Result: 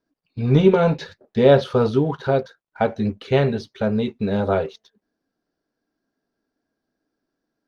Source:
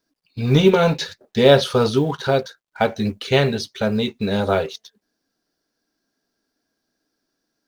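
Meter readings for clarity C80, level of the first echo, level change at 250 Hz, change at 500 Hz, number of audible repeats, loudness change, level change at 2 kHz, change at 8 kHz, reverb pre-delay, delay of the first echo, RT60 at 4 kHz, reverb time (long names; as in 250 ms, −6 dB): no reverb audible, no echo audible, 0.0 dB, −0.5 dB, no echo audible, −1.0 dB, −5.0 dB, below −10 dB, no reverb audible, no echo audible, no reverb audible, no reverb audible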